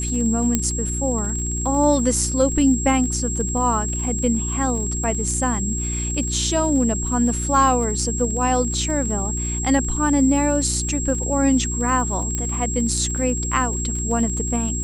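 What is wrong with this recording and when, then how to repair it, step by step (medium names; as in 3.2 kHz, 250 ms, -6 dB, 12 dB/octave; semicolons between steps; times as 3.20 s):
crackle 40 per s -29 dBFS
hum 60 Hz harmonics 6 -26 dBFS
whine 7.6 kHz -26 dBFS
0.55 s: pop -4 dBFS
12.35 s: pop -11 dBFS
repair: de-click; band-stop 7.6 kHz, Q 30; de-hum 60 Hz, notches 6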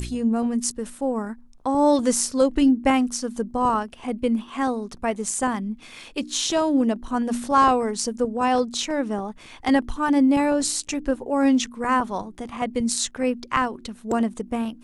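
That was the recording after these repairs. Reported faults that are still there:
nothing left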